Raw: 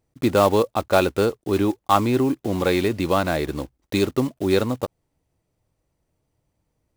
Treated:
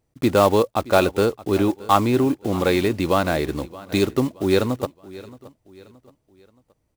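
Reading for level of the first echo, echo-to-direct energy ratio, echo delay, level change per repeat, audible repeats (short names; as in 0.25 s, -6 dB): -19.5 dB, -18.5 dB, 0.623 s, -7.5 dB, 3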